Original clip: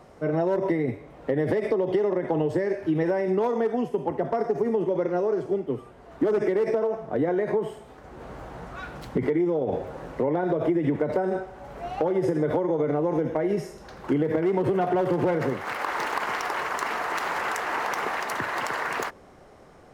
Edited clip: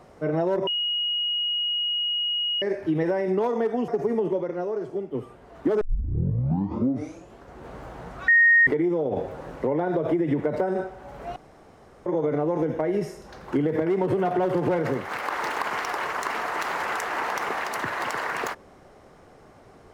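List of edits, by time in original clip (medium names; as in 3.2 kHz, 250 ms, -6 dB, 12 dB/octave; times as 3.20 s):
0.67–2.62 s: bleep 2.89 kHz -23 dBFS
3.88–4.44 s: delete
4.95–5.71 s: gain -4 dB
6.37 s: tape start 1.75 s
8.84–9.23 s: bleep 1.86 kHz -13 dBFS
11.92–12.62 s: room tone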